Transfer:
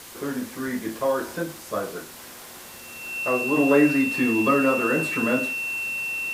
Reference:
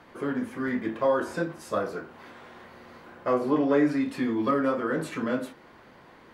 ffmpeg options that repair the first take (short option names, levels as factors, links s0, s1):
-af "adeclick=t=4,bandreject=f=2700:w=30,afwtdn=0.0079,asetnsamples=n=441:p=0,asendcmd='3.57 volume volume -4.5dB',volume=1"